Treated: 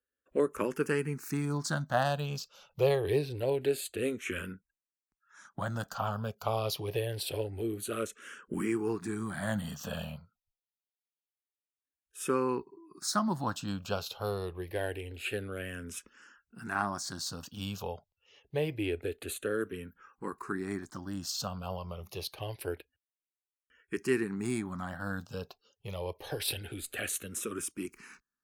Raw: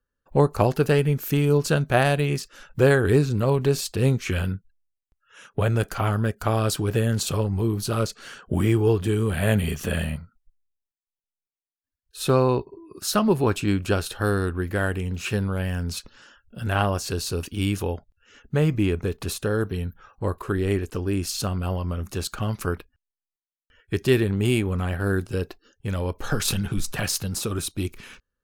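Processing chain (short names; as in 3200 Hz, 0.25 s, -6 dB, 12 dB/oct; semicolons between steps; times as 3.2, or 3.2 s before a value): HPF 270 Hz 6 dB/oct; endless phaser -0.26 Hz; gain -4.5 dB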